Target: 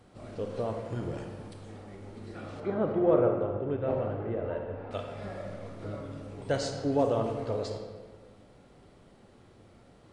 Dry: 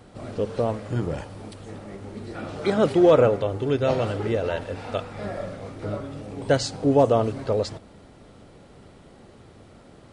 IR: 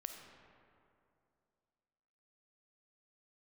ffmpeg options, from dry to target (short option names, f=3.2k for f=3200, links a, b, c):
-filter_complex "[0:a]asettb=1/sr,asplit=3[a][b][c];[a]atrim=end=2.604[d];[b]atrim=start=2.6:end=4.91,asetpts=PTS-STARTPTS,afade=t=in:d=0.004:c=qsin,afade=t=out:st=2.306:d=0.004:c=qsin,lowpass=1.4k[e];[c]atrim=start=4.906[f];[d][e]acrossfade=d=0.004:c1=hsin:c2=qsin[g];[g][f]acrossfade=d=0.004:c1=qsin:c2=hsin[h];[1:a]atrim=start_sample=2205,asetrate=74970,aresample=44100[i];[h][i]afir=irnorm=-1:irlink=0"